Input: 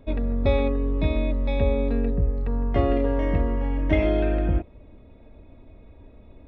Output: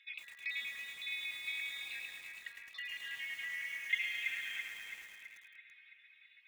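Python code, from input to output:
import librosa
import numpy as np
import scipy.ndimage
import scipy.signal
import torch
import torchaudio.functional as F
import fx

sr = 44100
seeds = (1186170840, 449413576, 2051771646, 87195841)

p1 = fx.spec_dropout(x, sr, seeds[0], share_pct=28)
p2 = scipy.signal.sosfilt(scipy.signal.cheby1(5, 1.0, 1900.0, 'highpass', fs=sr, output='sos'), p1)
p3 = fx.over_compress(p2, sr, threshold_db=-54.0, ratio=-1.0)
p4 = p2 + (p3 * librosa.db_to_amplitude(-1.5))
p5 = fx.quant_float(p4, sr, bits=4)
p6 = fx.air_absorb(p5, sr, metres=210.0)
p7 = p6 + fx.echo_filtered(p6, sr, ms=331, feedback_pct=70, hz=3000.0, wet_db=-5.0, dry=0)
p8 = fx.echo_crushed(p7, sr, ms=107, feedback_pct=80, bits=9, wet_db=-7.0)
y = p8 * librosa.db_to_amplitude(3.0)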